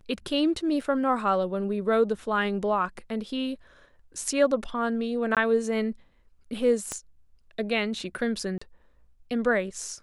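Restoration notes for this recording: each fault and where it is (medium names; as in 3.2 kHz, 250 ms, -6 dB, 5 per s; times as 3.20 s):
0.81 s: dropout 4.3 ms
5.35–5.37 s: dropout 17 ms
6.92 s: pop -17 dBFS
8.58–8.62 s: dropout 35 ms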